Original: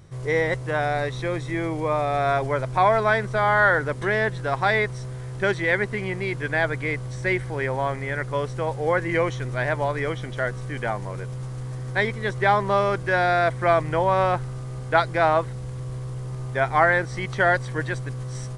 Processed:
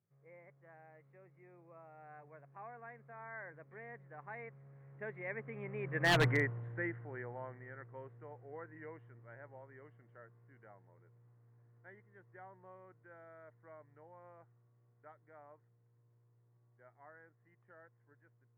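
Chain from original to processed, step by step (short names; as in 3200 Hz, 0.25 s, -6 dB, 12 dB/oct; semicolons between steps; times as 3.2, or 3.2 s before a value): Doppler pass-by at 6.22, 26 m/s, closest 2.4 m; elliptic band-pass 110–2000 Hz, stop band 40 dB; wavefolder -22.5 dBFS; gain +1 dB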